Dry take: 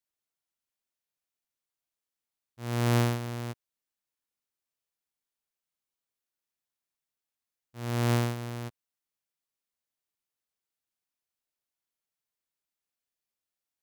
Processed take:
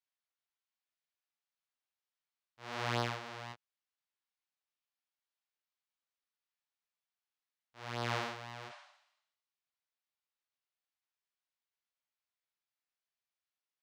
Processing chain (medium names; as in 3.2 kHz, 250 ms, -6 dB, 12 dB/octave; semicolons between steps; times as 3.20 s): chorus 1 Hz, delay 17 ms, depth 7.2 ms; spectral replace 8.72–9.40 s, 570–10000 Hz both; three-band isolator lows -16 dB, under 590 Hz, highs -22 dB, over 5.7 kHz; trim +1.5 dB